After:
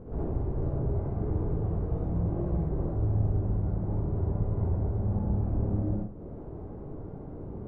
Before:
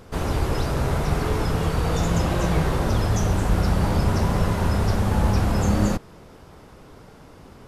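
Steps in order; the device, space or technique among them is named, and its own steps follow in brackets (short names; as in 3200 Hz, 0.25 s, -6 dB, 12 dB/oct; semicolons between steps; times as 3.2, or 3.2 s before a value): television next door (compressor 6:1, threshold -34 dBFS, peak gain reduction 18 dB; LPF 490 Hz 12 dB/oct; reverb RT60 0.40 s, pre-delay 52 ms, DRR -4 dB); gain +1.5 dB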